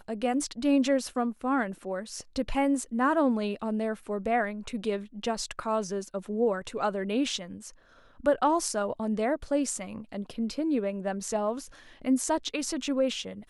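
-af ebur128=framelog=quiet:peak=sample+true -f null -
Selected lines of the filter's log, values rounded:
Integrated loudness:
  I:         -29.4 LUFS
  Threshold: -39.6 LUFS
Loudness range:
  LRA:         2.9 LU
  Threshold: -49.8 LUFS
  LRA low:   -31.1 LUFS
  LRA high:  -28.2 LUFS
Sample peak:
  Peak:      -11.2 dBFS
True peak:
  Peak:      -11.2 dBFS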